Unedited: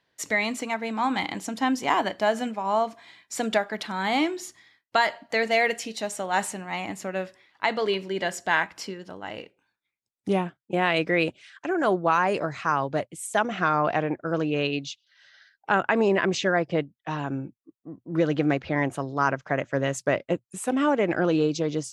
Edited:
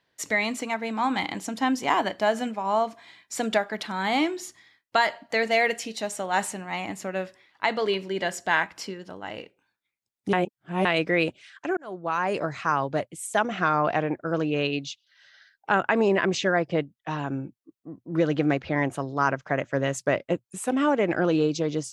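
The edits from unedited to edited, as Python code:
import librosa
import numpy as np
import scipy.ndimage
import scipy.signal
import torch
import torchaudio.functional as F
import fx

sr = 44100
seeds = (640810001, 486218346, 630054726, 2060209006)

y = fx.edit(x, sr, fx.reverse_span(start_s=10.33, length_s=0.52),
    fx.fade_in_span(start_s=11.77, length_s=0.67), tone=tone)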